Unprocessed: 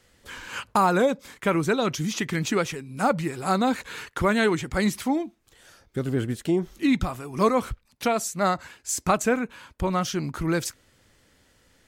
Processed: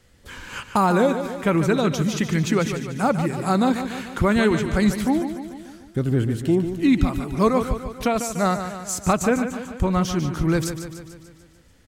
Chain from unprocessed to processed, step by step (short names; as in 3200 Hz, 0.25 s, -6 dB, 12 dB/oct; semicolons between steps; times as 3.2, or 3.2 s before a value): low shelf 250 Hz +8.5 dB; feedback echo 0.147 s, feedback 58%, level -9.5 dB